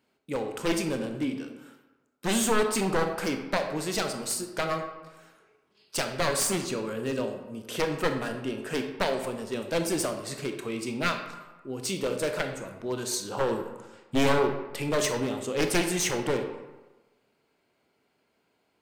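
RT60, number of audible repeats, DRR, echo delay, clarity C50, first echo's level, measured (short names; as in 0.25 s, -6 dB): 1.2 s, none, 5.0 dB, none, 7.0 dB, none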